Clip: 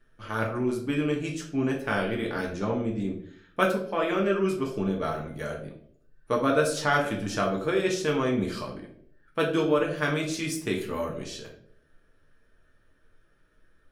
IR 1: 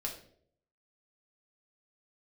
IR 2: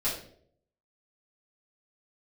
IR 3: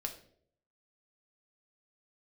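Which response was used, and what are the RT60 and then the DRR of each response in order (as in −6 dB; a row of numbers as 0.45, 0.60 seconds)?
1; 0.65, 0.65, 0.65 seconds; −1.0, −10.5, 3.0 decibels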